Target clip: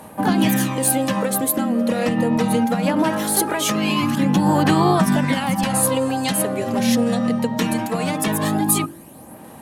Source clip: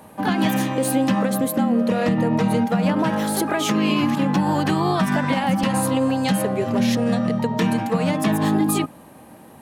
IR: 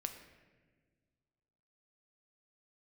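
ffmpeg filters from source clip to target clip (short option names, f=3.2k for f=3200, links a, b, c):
-af "aphaser=in_gain=1:out_gain=1:delay=4:decay=0.43:speed=0.21:type=sinusoidal,equalizer=f=11k:t=o:w=1.4:g=8.5,bandreject=f=47.83:t=h:w=4,bandreject=f=95.66:t=h:w=4,bandreject=f=143.49:t=h:w=4,bandreject=f=191.32:t=h:w=4,bandreject=f=239.15:t=h:w=4,bandreject=f=286.98:t=h:w=4,bandreject=f=334.81:t=h:w=4,bandreject=f=382.64:t=h:w=4,bandreject=f=430.47:t=h:w=4"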